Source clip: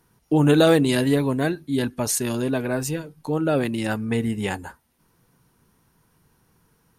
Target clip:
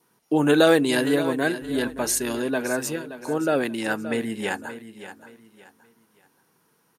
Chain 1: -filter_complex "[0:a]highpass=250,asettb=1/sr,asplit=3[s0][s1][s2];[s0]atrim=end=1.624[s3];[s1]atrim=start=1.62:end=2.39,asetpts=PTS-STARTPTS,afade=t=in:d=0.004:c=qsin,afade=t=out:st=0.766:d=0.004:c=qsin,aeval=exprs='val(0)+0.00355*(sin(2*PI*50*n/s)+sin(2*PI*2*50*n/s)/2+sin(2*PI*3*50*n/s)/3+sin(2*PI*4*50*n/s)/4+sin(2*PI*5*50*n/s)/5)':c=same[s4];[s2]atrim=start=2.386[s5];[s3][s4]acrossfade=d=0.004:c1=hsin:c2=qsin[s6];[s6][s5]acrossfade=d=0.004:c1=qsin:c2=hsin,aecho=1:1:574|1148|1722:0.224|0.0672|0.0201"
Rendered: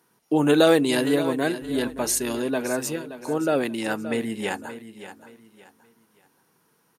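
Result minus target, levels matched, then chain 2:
2 kHz band -3.0 dB
-filter_complex "[0:a]highpass=250,adynamicequalizer=threshold=0.00447:dfrequency=1600:dqfactor=4.9:tfrequency=1600:tqfactor=4.9:attack=5:release=100:ratio=0.333:range=2.5:mode=boostabove:tftype=bell,asettb=1/sr,asplit=3[s0][s1][s2];[s0]atrim=end=1.624[s3];[s1]atrim=start=1.62:end=2.39,asetpts=PTS-STARTPTS,afade=t=in:d=0.004:c=qsin,afade=t=out:st=0.766:d=0.004:c=qsin,aeval=exprs='val(0)+0.00355*(sin(2*PI*50*n/s)+sin(2*PI*2*50*n/s)/2+sin(2*PI*3*50*n/s)/3+sin(2*PI*4*50*n/s)/4+sin(2*PI*5*50*n/s)/5)':c=same[s4];[s2]atrim=start=2.386[s5];[s3][s4]acrossfade=d=0.004:c1=hsin:c2=qsin[s6];[s6][s5]acrossfade=d=0.004:c1=qsin:c2=hsin,aecho=1:1:574|1148|1722:0.224|0.0672|0.0201"

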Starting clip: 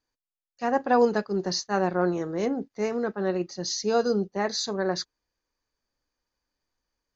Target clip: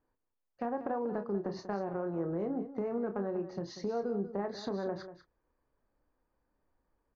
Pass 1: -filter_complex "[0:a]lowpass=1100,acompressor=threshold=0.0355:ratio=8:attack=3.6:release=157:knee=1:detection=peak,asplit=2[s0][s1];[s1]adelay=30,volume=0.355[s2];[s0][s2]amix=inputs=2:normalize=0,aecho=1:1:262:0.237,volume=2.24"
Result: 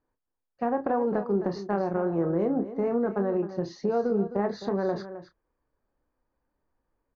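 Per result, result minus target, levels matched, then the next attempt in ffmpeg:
compression: peak gain reduction -8.5 dB; echo 72 ms late
-filter_complex "[0:a]lowpass=1100,acompressor=threshold=0.0119:ratio=8:attack=3.6:release=157:knee=1:detection=peak,asplit=2[s0][s1];[s1]adelay=30,volume=0.355[s2];[s0][s2]amix=inputs=2:normalize=0,aecho=1:1:262:0.237,volume=2.24"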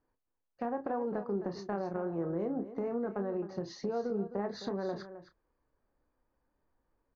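echo 72 ms late
-filter_complex "[0:a]lowpass=1100,acompressor=threshold=0.0119:ratio=8:attack=3.6:release=157:knee=1:detection=peak,asplit=2[s0][s1];[s1]adelay=30,volume=0.355[s2];[s0][s2]amix=inputs=2:normalize=0,aecho=1:1:190:0.237,volume=2.24"

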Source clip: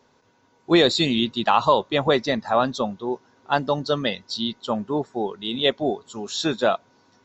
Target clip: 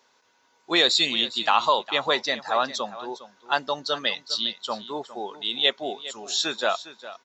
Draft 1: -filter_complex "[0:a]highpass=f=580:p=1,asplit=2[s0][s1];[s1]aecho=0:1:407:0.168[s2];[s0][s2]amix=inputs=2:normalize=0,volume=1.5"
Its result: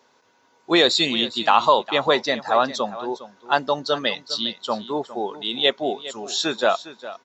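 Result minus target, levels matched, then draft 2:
500 Hz band +4.0 dB
-filter_complex "[0:a]highpass=f=1600:p=1,asplit=2[s0][s1];[s1]aecho=0:1:407:0.168[s2];[s0][s2]amix=inputs=2:normalize=0,volume=1.5"

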